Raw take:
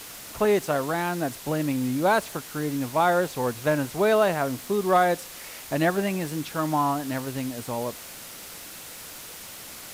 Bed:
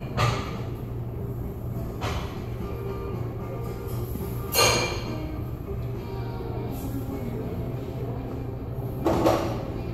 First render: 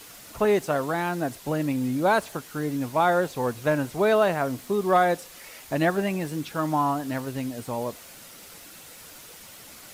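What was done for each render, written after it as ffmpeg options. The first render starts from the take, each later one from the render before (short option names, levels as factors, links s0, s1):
-af "afftdn=nr=6:nf=-42"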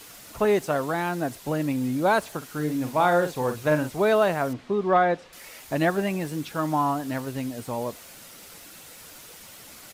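-filter_complex "[0:a]asplit=3[s0][s1][s2];[s0]afade=t=out:st=2.41:d=0.02[s3];[s1]asplit=2[s4][s5];[s5]adelay=46,volume=0.398[s6];[s4][s6]amix=inputs=2:normalize=0,afade=t=in:st=2.41:d=0.02,afade=t=out:st=3.88:d=0.02[s7];[s2]afade=t=in:st=3.88:d=0.02[s8];[s3][s7][s8]amix=inputs=3:normalize=0,asettb=1/sr,asplit=3[s9][s10][s11];[s9]atrim=end=4.534[s12];[s10]atrim=start=4.53:end=5.33,asetpts=PTS-STARTPTS,afade=t=in:d=0.004:c=qsin,afade=t=out:st=0.796:d=0.004:c=qsin,lowpass=3200[s13];[s11]atrim=start=5.326[s14];[s12][s13]acrossfade=d=0.004:c1=hsin:c2=qsin[s15];[s15][s14]acrossfade=d=0.004:c1=qsin:c2=hsin"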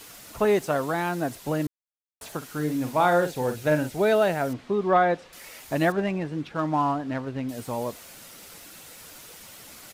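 -filter_complex "[0:a]asettb=1/sr,asplit=3[s0][s1][s2];[s0]atrim=end=3.264[s3];[s1]atrim=start=3.26:end=4.49,asetpts=PTS-STARTPTS,afade=t=in:d=0.004:c=qsin,afade=t=out:st=1.226:d=0.004:c=qsin,equalizer=f=1100:w=5.9:g=-12[s4];[s2]atrim=start=4.486[s5];[s3][s4]acrossfade=d=0.004:c1=hsin:c2=qsin[s6];[s6][s5]acrossfade=d=0.004:c1=qsin:c2=hsin,asettb=1/sr,asplit=3[s7][s8][s9];[s7]atrim=end=5.924[s10];[s8]atrim=start=5.92:end=7.49,asetpts=PTS-STARTPTS,afade=t=in:d=0.004:c=qsin,afade=t=out:st=1.566:d=0.004:c=qsin,adynamicsmooth=sensitivity=3:basefreq=2700[s11];[s9]atrim=start=7.486[s12];[s10][s11]acrossfade=d=0.004:c1=hsin:c2=qsin[s13];[s13][s12]acrossfade=d=0.004:c1=qsin:c2=hsin,asplit=3[s14][s15][s16];[s14]atrim=end=1.67,asetpts=PTS-STARTPTS,afade=t=out:st=1.666:d=0.004:c=hsin[s17];[s15]atrim=start=1.67:end=2.21,asetpts=PTS-STARTPTS,volume=0[s18];[s16]atrim=start=2.21,asetpts=PTS-STARTPTS,afade=t=in:d=0.004:c=hsin[s19];[s17][s18][s19]concat=n=3:v=0:a=1"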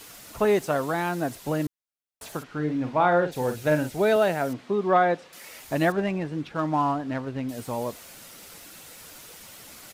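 -filter_complex "[0:a]asplit=3[s0][s1][s2];[s0]afade=t=out:st=2.42:d=0.02[s3];[s1]lowpass=3000,afade=t=in:st=2.42:d=0.02,afade=t=out:st=3.31:d=0.02[s4];[s2]afade=t=in:st=3.31:d=0.02[s5];[s3][s4][s5]amix=inputs=3:normalize=0,asettb=1/sr,asplit=3[s6][s7][s8];[s6]atrim=end=4.164[s9];[s7]atrim=start=4.16:end=5.5,asetpts=PTS-STARTPTS,afade=t=in:d=0.004:c=qsin,afade=t=out:st=1.336:d=0.004:c=qsin,highpass=120[s10];[s8]atrim=start=5.496[s11];[s9][s10]acrossfade=d=0.004:c1=hsin:c2=qsin[s12];[s12][s11]acrossfade=d=0.004:c1=qsin:c2=hsin"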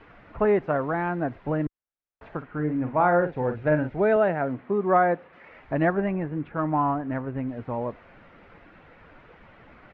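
-af "lowpass=f=2100:w=0.5412,lowpass=f=2100:w=1.3066,lowshelf=f=62:g=10"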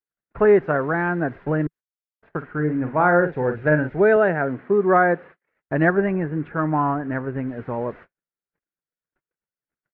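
-af "agate=range=0.00178:threshold=0.00631:ratio=16:detection=peak,equalizer=f=160:t=o:w=0.67:g=5,equalizer=f=400:t=o:w=0.67:g=7,equalizer=f=1600:t=o:w=0.67:g=9"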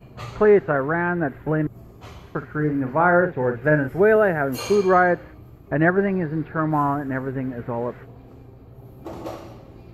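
-filter_complex "[1:a]volume=0.251[s0];[0:a][s0]amix=inputs=2:normalize=0"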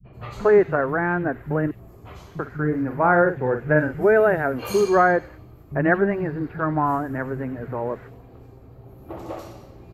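-filter_complex "[0:a]acrossover=split=190|3300[s0][s1][s2];[s1]adelay=40[s3];[s2]adelay=130[s4];[s0][s3][s4]amix=inputs=3:normalize=0"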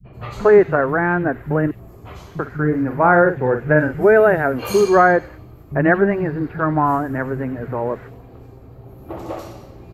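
-af "volume=1.68,alimiter=limit=0.794:level=0:latency=1"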